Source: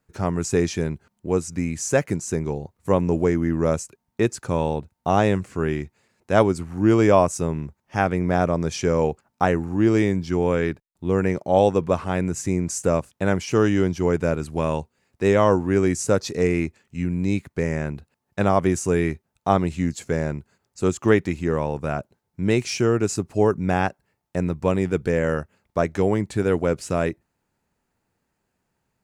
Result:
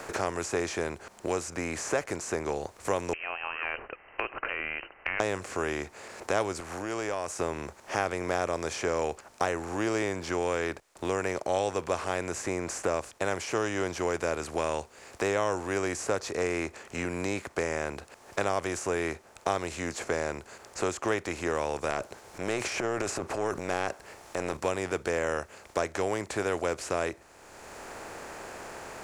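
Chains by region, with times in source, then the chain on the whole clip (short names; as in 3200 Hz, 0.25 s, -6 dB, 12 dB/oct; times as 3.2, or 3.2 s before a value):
3.13–5.2 compressor 4:1, threshold -27 dBFS + tilt +3.5 dB/oct + inverted band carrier 2900 Hz
6.6–7.39 tilt +1.5 dB/oct + compressor 10:1, threshold -31 dBFS
21.9–24.57 compressor 1.5:1, threshold -25 dBFS + transient shaper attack -10 dB, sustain +9 dB
whole clip: per-bin compression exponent 0.6; bell 160 Hz -14 dB 2 oct; three-band squash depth 70%; gain -8 dB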